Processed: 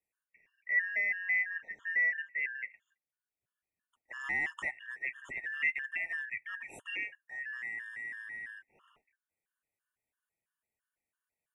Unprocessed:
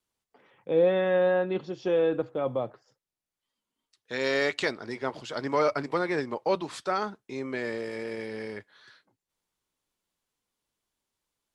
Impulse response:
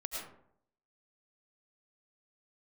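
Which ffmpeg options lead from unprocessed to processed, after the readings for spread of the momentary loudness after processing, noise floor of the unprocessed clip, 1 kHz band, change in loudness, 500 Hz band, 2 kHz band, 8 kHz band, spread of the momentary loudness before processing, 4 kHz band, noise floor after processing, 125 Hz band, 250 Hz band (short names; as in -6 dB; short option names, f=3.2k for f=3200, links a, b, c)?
13 LU, under -85 dBFS, -20.0 dB, -5.5 dB, -33.0 dB, +4.0 dB, under -10 dB, 13 LU, -13.5 dB, under -85 dBFS, under -25 dB, -28.0 dB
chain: -filter_complex "[0:a]afftfilt=real='real(if(lt(b,272),68*(eq(floor(b/68),0)*2+eq(floor(b/68),1)*0+eq(floor(b/68),2)*3+eq(floor(b/68),3)*1)+mod(b,68),b),0)':imag='imag(if(lt(b,272),68*(eq(floor(b/68),0)*2+eq(floor(b/68),1)*0+eq(floor(b/68),2)*3+eq(floor(b/68),3)*1)+mod(b,68),b),0)':win_size=2048:overlap=0.75,acrossover=split=290|600|2600[a][b][c][d];[a]aeval=exprs='clip(val(0),-1,0.00562)':c=same[e];[e][b][c][d]amix=inputs=4:normalize=0,asuperstop=centerf=4600:order=4:qfactor=0.87,afftfilt=real='re*gt(sin(2*PI*3*pts/sr)*(1-2*mod(floor(b*sr/1024/910),2)),0)':imag='im*gt(sin(2*PI*3*pts/sr)*(1-2*mod(floor(b*sr/1024/910),2)),0)':win_size=1024:overlap=0.75,volume=-3.5dB"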